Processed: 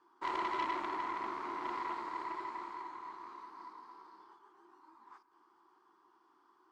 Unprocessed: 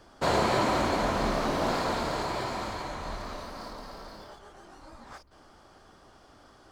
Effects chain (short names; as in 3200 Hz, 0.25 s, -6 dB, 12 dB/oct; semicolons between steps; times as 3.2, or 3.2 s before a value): double band-pass 590 Hz, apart 1.5 oct; tube stage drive 29 dB, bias 0.6; tilt +3.5 dB/oct; reverb RT60 2.5 s, pre-delay 22 ms, DRR 14.5 dB; gain +1 dB